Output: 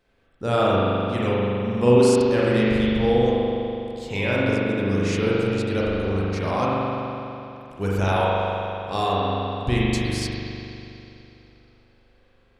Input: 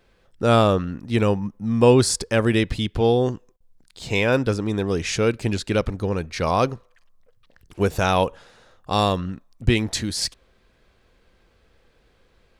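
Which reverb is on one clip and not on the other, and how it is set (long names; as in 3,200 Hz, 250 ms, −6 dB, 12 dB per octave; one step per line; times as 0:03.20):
spring reverb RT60 3 s, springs 41 ms, chirp 80 ms, DRR −7 dB
level −8 dB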